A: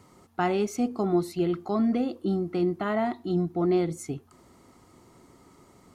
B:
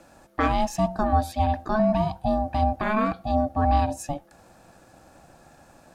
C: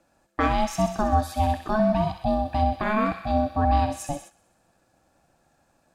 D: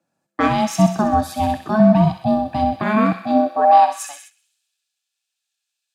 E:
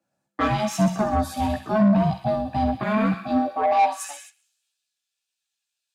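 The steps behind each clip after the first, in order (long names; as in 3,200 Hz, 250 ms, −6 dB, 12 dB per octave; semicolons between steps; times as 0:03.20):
ring modulation 430 Hz; level +6 dB
delay with a high-pass on its return 64 ms, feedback 72%, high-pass 1,800 Hz, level −6.5 dB; noise gate −42 dBFS, range −13 dB
high-pass filter sweep 150 Hz → 3,200 Hz, 0:03.06–0:04.49; multiband upward and downward expander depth 40%; level +5 dB
multi-voice chorus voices 4, 0.88 Hz, delay 15 ms, depth 1.1 ms; soft clipping −13 dBFS, distortion −12 dB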